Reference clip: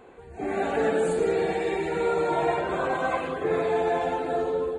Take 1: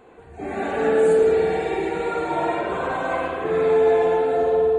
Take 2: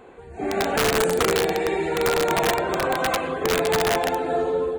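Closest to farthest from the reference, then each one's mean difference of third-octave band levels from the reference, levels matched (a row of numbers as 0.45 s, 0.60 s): 1, 2; 3.5 dB, 5.5 dB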